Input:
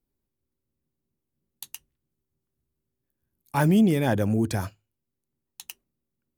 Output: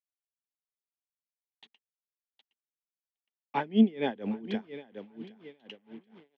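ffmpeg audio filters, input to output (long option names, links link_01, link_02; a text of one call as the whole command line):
ffmpeg -i in.wav -filter_complex "[0:a]highshelf=frequency=2300:gain=6.5,asplit=2[link_01][link_02];[link_02]aecho=0:1:765|1530|2295|3060:0.251|0.0955|0.0363|0.0138[link_03];[link_01][link_03]amix=inputs=2:normalize=0,acrusher=bits=7:mix=0:aa=0.5,acrossover=split=300|1700[link_04][link_05][link_06];[link_06]asoftclip=type=tanh:threshold=-28dB[link_07];[link_04][link_05][link_07]amix=inputs=3:normalize=0,highpass=frequency=190:width=0.5412,highpass=frequency=190:width=1.3066,equalizer=frequency=230:width_type=q:width=4:gain=8,equalizer=frequency=430:width_type=q:width=4:gain=9,equalizer=frequency=800:width_type=q:width=4:gain=4,equalizer=frequency=1300:width_type=q:width=4:gain=-4,equalizer=frequency=2000:width_type=q:width=4:gain=6,equalizer=frequency=3200:width_type=q:width=4:gain=9,lowpass=frequency=3300:width=0.5412,lowpass=frequency=3300:width=1.3066,agate=range=-33dB:threshold=-51dB:ratio=3:detection=peak,aeval=exprs='val(0)*pow(10,-23*(0.5-0.5*cos(2*PI*4.2*n/s))/20)':channel_layout=same,volume=-6dB" out.wav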